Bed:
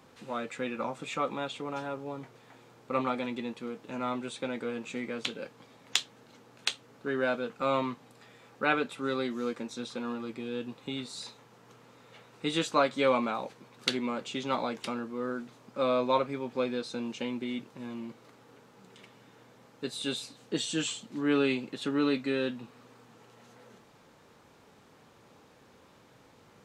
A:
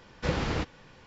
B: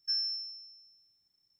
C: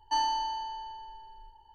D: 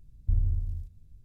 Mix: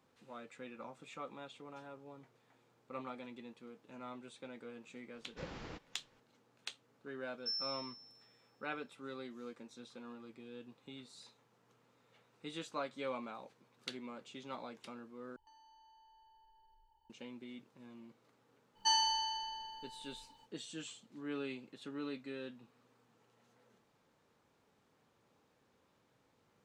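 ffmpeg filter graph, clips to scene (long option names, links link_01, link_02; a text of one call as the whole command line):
ffmpeg -i bed.wav -i cue0.wav -i cue1.wav -i cue2.wav -filter_complex "[3:a]asplit=2[link_01][link_02];[0:a]volume=-15dB[link_03];[1:a]equalizer=frequency=77:width=1.2:gain=-7[link_04];[link_01]acompressor=threshold=-48dB:ratio=6:attack=3.2:release=140:knee=1:detection=peak[link_05];[link_02]tiltshelf=frequency=1500:gain=-9.5[link_06];[link_03]asplit=2[link_07][link_08];[link_07]atrim=end=15.364[link_09];[link_05]atrim=end=1.74,asetpts=PTS-STARTPTS,volume=-15.5dB[link_10];[link_08]atrim=start=17.096[link_11];[link_04]atrim=end=1.06,asetpts=PTS-STARTPTS,volume=-17dB,afade=type=in:duration=0.004:curve=hsin,afade=type=out:start_time=1.056:duration=0.004:curve=hsin,adelay=5140[link_12];[2:a]atrim=end=1.59,asetpts=PTS-STARTPTS,volume=-7.5dB,afade=type=in:duration=0.004:curve=hsin,afade=type=out:start_time=1.586:duration=0.004:curve=hsin,adelay=325458S[link_13];[link_06]atrim=end=1.74,asetpts=PTS-STARTPTS,volume=-2dB,afade=type=in:duration=0.05,afade=type=out:start_time=1.69:duration=0.05,adelay=18740[link_14];[link_09][link_10]acrossfade=duration=0.004:curve1=hsin:curve2=hsin[link_15];[link_15][link_11]acrossfade=duration=0.004:curve1=hsin:curve2=hsin[link_16];[link_16][link_12][link_13][link_14]amix=inputs=4:normalize=0" out.wav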